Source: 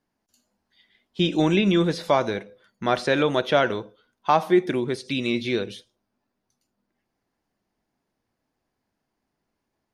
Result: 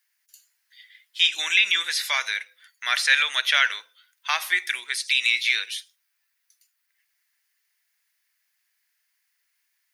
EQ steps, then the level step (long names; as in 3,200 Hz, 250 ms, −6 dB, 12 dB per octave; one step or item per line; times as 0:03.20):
high-pass with resonance 1,900 Hz, resonance Q 2.7
spectral tilt +3 dB per octave
high-shelf EQ 8,700 Hz +9.5 dB
0.0 dB